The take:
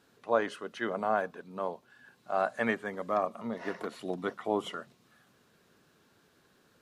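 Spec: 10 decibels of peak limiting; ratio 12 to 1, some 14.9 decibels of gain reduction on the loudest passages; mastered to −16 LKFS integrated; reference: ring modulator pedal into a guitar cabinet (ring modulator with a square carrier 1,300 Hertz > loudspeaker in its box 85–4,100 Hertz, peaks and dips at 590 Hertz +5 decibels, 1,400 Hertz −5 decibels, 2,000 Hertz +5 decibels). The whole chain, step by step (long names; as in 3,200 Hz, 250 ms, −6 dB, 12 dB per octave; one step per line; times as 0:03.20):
downward compressor 12 to 1, threshold −35 dBFS
brickwall limiter −34 dBFS
ring modulator with a square carrier 1,300 Hz
loudspeaker in its box 85–4,100 Hz, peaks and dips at 590 Hz +5 dB, 1,400 Hz −5 dB, 2,000 Hz +5 dB
level +28.5 dB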